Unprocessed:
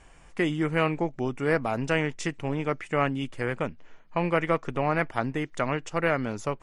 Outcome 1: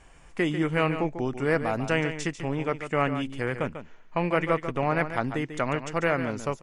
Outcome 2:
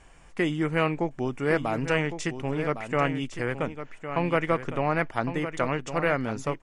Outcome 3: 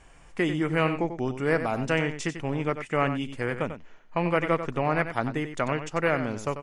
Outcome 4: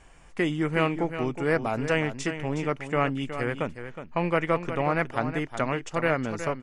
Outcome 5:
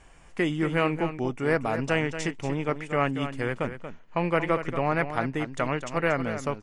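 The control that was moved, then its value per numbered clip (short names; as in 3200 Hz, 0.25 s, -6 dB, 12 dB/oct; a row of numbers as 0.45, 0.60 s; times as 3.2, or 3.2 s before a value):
echo, time: 144, 1108, 93, 367, 233 ms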